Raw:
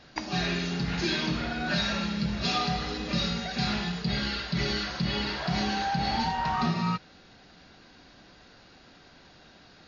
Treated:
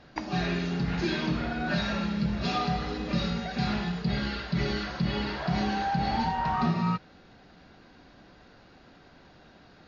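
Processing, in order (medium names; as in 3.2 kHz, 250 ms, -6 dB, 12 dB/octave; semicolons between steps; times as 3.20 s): treble shelf 2.7 kHz -11 dB; trim +1.5 dB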